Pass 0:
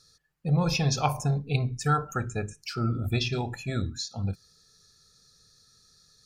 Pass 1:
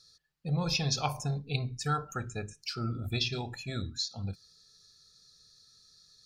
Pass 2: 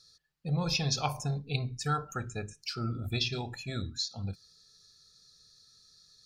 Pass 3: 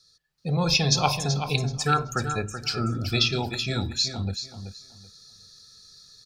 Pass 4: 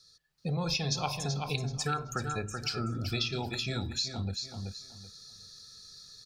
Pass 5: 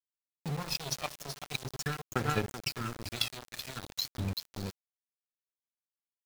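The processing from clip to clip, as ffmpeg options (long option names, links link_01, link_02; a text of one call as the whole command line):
ffmpeg -i in.wav -af "equalizer=frequency=4200:width_type=o:width=1.1:gain=8.5,volume=-6.5dB" out.wav
ffmpeg -i in.wav -af anull out.wav
ffmpeg -i in.wav -filter_complex "[0:a]acrossover=split=180|1400|3700[link_01][link_02][link_03][link_04];[link_01]asoftclip=type=tanh:threshold=-36dB[link_05];[link_05][link_02][link_03][link_04]amix=inputs=4:normalize=0,dynaudnorm=framelen=250:gausssize=3:maxgain=9dB,aecho=1:1:380|760|1140:0.355|0.0781|0.0172" out.wav
ffmpeg -i in.wav -af "acompressor=threshold=-33dB:ratio=2.5" out.wav
ffmpeg -i in.wav -af "aphaser=in_gain=1:out_gain=1:delay=1.7:decay=0.61:speed=0.43:type=sinusoidal,aeval=exprs='0.211*(cos(1*acos(clip(val(0)/0.211,-1,1)))-cos(1*PI/2))+0.0473*(cos(3*acos(clip(val(0)/0.211,-1,1)))-cos(3*PI/2))':channel_layout=same,aeval=exprs='val(0)*gte(abs(val(0)),0.0141)':channel_layout=same,volume=2dB" out.wav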